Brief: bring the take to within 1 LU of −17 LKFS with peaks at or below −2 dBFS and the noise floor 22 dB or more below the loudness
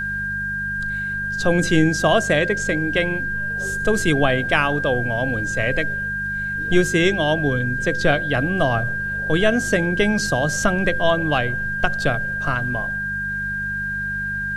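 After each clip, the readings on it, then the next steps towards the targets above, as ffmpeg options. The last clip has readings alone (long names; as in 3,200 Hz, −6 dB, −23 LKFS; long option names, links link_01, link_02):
mains hum 50 Hz; hum harmonics up to 200 Hz; level of the hum −32 dBFS; interfering tone 1,600 Hz; level of the tone −23 dBFS; integrated loudness −20.5 LKFS; sample peak −1.5 dBFS; target loudness −17.0 LKFS
→ -af "bandreject=frequency=50:width_type=h:width=4,bandreject=frequency=100:width_type=h:width=4,bandreject=frequency=150:width_type=h:width=4,bandreject=frequency=200:width_type=h:width=4"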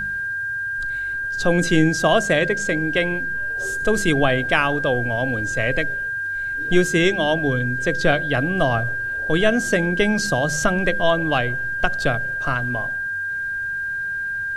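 mains hum none found; interfering tone 1,600 Hz; level of the tone −23 dBFS
→ -af "bandreject=frequency=1600:width=30"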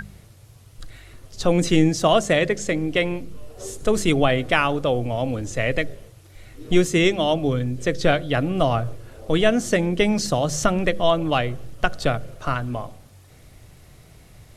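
interfering tone none found; integrated loudness −22.0 LKFS; sample peak −2.0 dBFS; target loudness −17.0 LKFS
→ -af "volume=5dB,alimiter=limit=-2dB:level=0:latency=1"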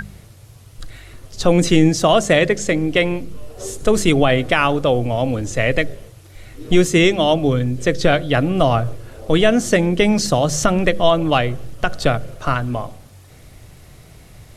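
integrated loudness −17.5 LKFS; sample peak −2.0 dBFS; background noise floor −44 dBFS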